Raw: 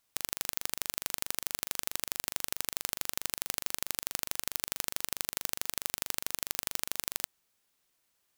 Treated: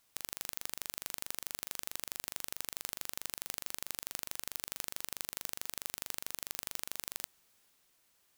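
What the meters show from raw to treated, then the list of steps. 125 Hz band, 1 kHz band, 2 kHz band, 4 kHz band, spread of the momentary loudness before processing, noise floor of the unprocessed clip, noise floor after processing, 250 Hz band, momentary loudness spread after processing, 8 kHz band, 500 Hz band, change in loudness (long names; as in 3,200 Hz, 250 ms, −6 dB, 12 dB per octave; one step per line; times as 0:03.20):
−6.0 dB, −6.0 dB, −6.0 dB, −6.0 dB, 1 LU, −76 dBFS, −72 dBFS, −6.0 dB, 1 LU, −6.0 dB, −6.0 dB, −6.0 dB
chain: transient designer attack −11 dB, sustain +2 dB
level +4.5 dB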